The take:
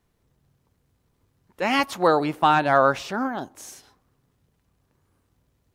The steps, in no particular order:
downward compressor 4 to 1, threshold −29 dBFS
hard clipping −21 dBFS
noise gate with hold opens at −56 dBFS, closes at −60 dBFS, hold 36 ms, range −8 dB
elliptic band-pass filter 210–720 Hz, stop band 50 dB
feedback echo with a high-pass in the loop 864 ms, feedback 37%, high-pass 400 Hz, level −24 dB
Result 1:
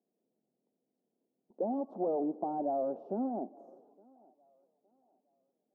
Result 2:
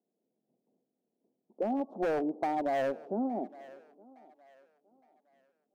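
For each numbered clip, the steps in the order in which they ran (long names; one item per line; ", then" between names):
hard clipping, then downward compressor, then elliptic band-pass filter, then noise gate with hold, then feedback echo with a high-pass in the loop
noise gate with hold, then elliptic band-pass filter, then hard clipping, then feedback echo with a high-pass in the loop, then downward compressor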